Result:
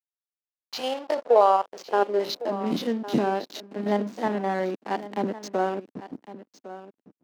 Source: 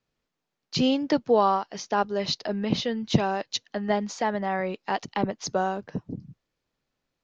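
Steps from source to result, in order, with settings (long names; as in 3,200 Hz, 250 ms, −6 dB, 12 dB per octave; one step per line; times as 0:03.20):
spectrum averaged block by block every 50 ms
four-comb reverb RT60 0.4 s, combs from 31 ms, DRR 15 dB
slack as between gear wheels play −30.5 dBFS
high-pass filter sweep 780 Hz → 270 Hz, 0:00.74–0:02.74
single-tap delay 1,107 ms −15 dB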